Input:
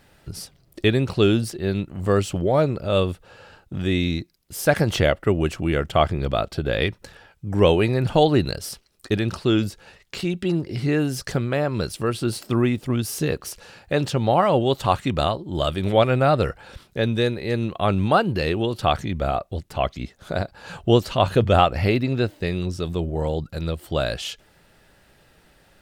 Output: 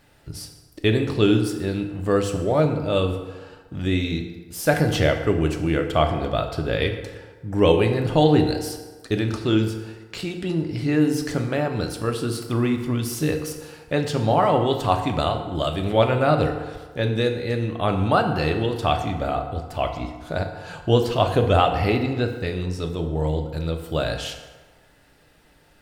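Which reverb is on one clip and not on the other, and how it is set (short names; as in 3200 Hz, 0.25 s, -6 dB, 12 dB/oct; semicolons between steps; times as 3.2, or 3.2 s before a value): FDN reverb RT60 1.4 s, low-frequency decay 0.8×, high-frequency decay 0.6×, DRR 4 dB; gain -2 dB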